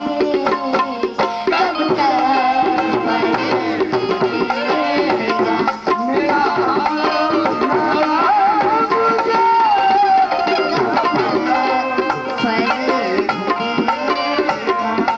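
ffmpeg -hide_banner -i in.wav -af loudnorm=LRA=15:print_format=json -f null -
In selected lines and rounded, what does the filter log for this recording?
"input_i" : "-16.4",
"input_tp" : "-3.4",
"input_lra" : "3.1",
"input_thresh" : "-26.4",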